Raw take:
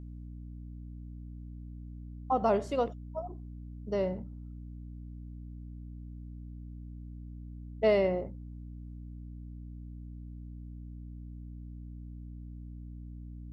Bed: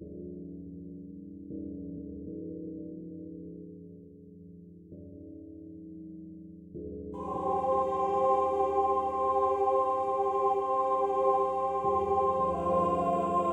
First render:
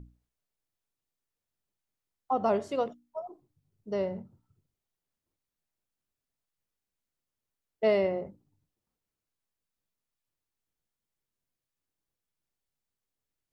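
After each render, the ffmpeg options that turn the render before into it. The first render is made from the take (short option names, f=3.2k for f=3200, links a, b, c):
-af "bandreject=f=60:t=h:w=6,bandreject=f=120:t=h:w=6,bandreject=f=180:t=h:w=6,bandreject=f=240:t=h:w=6,bandreject=f=300:t=h:w=6"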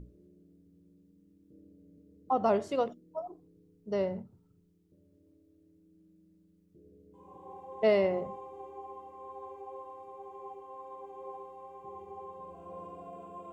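-filter_complex "[1:a]volume=-18dB[a];[0:a][a]amix=inputs=2:normalize=0"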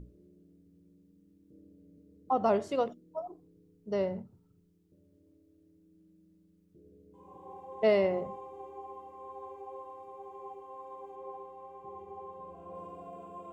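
-filter_complex "[0:a]asettb=1/sr,asplit=3[a][b][c];[a]atrim=end=11.154[d];[b]atrim=start=11.15:end=12.75,asetpts=PTS-STARTPTS,afade=t=in:d=0.004:c=qsin,afade=t=out:st=1.596:d=0.004:c=qsin,highshelf=f=4.5k:g=-6[e];[c]atrim=start=12.746[f];[d][e]acrossfade=d=0.004:c1=hsin:c2=qsin[g];[g][f]acrossfade=d=0.004:c1=qsin:c2=hsin"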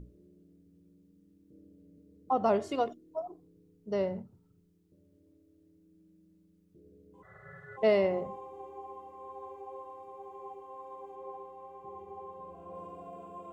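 -filter_complex "[0:a]asettb=1/sr,asplit=3[a][b][c];[a]atrim=end=2.624[d];[b]atrim=start=2.62:end=3.22,asetpts=PTS-STARTPTS,afade=t=in:d=0.004:c=qsin,afade=t=out:st=0.596:d=0.004:c=qsin,aecho=1:1:2.8:0.56,atrim=end_sample=26460[e];[c]atrim=start=3.216[f];[d][e]acrossfade=d=0.004:c1=hsin:c2=qsin[g];[g][f]acrossfade=d=0.004:c1=qsin:c2=hsin,asplit=3[h][i][j];[h]afade=t=out:st=7.22:d=0.02[k];[i]aeval=exprs='val(0)*sin(2*PI*940*n/s)':c=same,afade=t=in:st=7.22:d=0.02,afade=t=out:st=7.76:d=0.02[l];[j]afade=t=in:st=7.76:d=0.02[m];[k][l][m]amix=inputs=3:normalize=0"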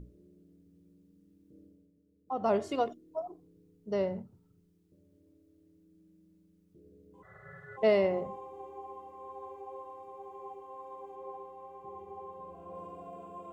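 -filter_complex "[0:a]asplit=3[a][b][c];[a]atrim=end=1.92,asetpts=PTS-STARTPTS,afade=t=out:st=1.62:d=0.3:silence=0.281838[d];[b]atrim=start=1.92:end=2.26,asetpts=PTS-STARTPTS,volume=-11dB[e];[c]atrim=start=2.26,asetpts=PTS-STARTPTS,afade=t=in:d=0.3:silence=0.281838[f];[d][e][f]concat=n=3:v=0:a=1"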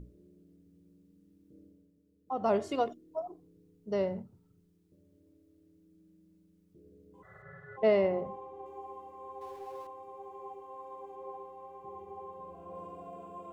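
-filter_complex "[0:a]asettb=1/sr,asplit=3[a][b][c];[a]atrim=end=7.424[d];[b]atrim=start=7.42:end=8.66,asetpts=PTS-STARTPTS,afade=t=in:d=0.004:c=qsin,afade=t=out:st=1.236:d=0.004:c=qsin,lowpass=f=2.6k:p=1[e];[c]atrim=start=8.656[f];[d][e]acrossfade=d=0.004:c1=hsin:c2=qsin[g];[g][f]acrossfade=d=0.004:c1=qsin:c2=hsin,asettb=1/sr,asplit=3[h][i][j];[h]atrim=end=9.414[k];[i]atrim=start=9.41:end=9.87,asetpts=PTS-STARTPTS,afade=t=in:d=0.004:c=qsin,afade=t=out:st=0.456:d=0.004:c=qsin,aeval=exprs='val(0)+0.5*0.00211*sgn(val(0))':c=same[l];[j]atrim=start=9.866[m];[k][l]acrossfade=d=0.004:c1=hsin:c2=qsin[n];[n][m]acrossfade=d=0.004:c1=qsin:c2=hsin"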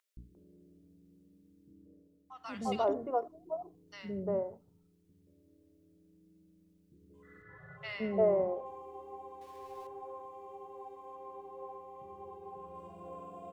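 -filter_complex "[0:a]acrossover=split=340|1300[a][b][c];[a]adelay=170[d];[b]adelay=350[e];[d][e][c]amix=inputs=3:normalize=0"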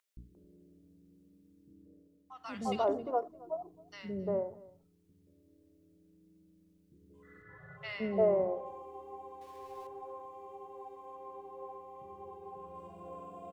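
-af "aecho=1:1:268:0.0794"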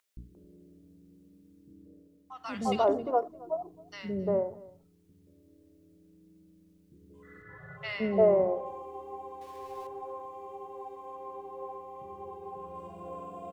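-af "volume=5dB"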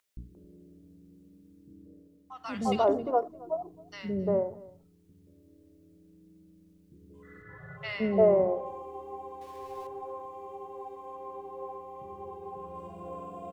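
-af "lowshelf=f=320:g=3"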